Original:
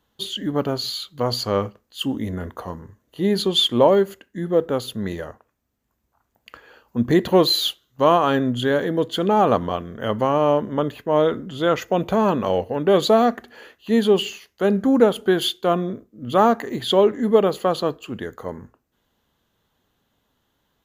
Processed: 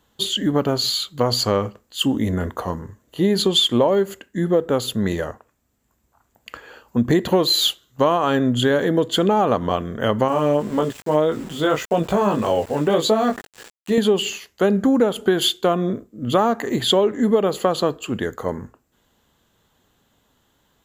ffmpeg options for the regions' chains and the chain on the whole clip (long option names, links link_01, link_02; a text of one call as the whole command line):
ffmpeg -i in.wav -filter_complex "[0:a]asettb=1/sr,asplit=3[link_01][link_02][link_03];[link_01]atrim=end=10.284[link_04];[link_02]atrim=start=10.28:end=13.98,asetpts=PTS-STARTPTS,afade=type=in:duration=0.004:curve=qsin,afade=type=out:start_time=3.696:duration=0.004:curve=qsin,flanger=delay=18:depth=2.2:speed=1.8,aeval=exprs='val(0)*gte(abs(val(0)),0.00891)':channel_layout=same[link_05];[link_03]atrim=start=13.976[link_06];[link_04][link_05]acrossfade=duration=0.004:curve1=hsin:curve2=qsin[link_07];[link_07][link_06]acrossfade=duration=0.004:curve1=qsin:curve2=hsin,equalizer=frequency=7500:width=6:gain=9.5,acompressor=threshold=-20dB:ratio=5,volume=6dB" out.wav